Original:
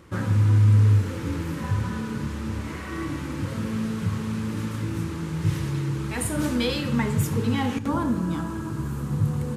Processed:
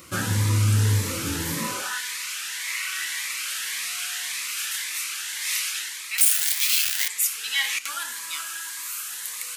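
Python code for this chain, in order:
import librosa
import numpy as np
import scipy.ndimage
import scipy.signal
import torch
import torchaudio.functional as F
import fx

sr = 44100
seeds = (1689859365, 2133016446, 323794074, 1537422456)

y = fx.clip_1bit(x, sr, at=(6.18, 7.08))
y = fx.tilt_eq(y, sr, slope=4.0)
y = fx.rider(y, sr, range_db=5, speed_s=0.5)
y = fx.dmg_tone(y, sr, hz=720.0, level_db=-37.0, at=(3.73, 4.35), fade=0.02)
y = fx.filter_sweep_highpass(y, sr, from_hz=66.0, to_hz=2000.0, start_s=1.47, end_s=2.02, q=1.6)
y = fx.notch_cascade(y, sr, direction='rising', hz=1.8)
y = y * librosa.db_to_amplitude(1.5)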